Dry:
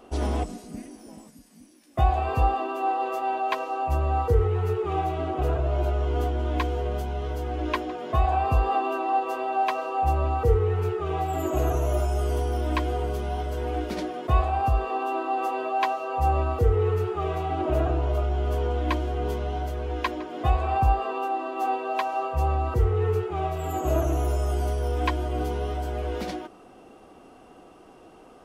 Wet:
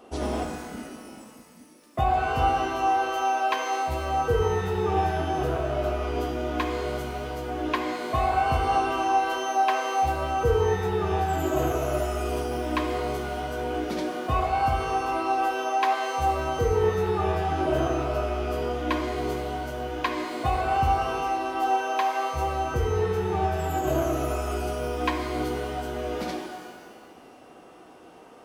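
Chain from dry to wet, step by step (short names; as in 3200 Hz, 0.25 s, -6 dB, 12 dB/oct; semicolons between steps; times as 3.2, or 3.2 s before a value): HPF 120 Hz 6 dB/oct; shimmer reverb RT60 1.4 s, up +12 st, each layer -8 dB, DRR 4 dB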